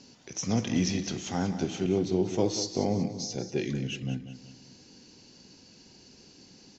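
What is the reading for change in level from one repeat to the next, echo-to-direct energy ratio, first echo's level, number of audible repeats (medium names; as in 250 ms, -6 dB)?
-7.5 dB, -10.5 dB, -11.5 dB, 3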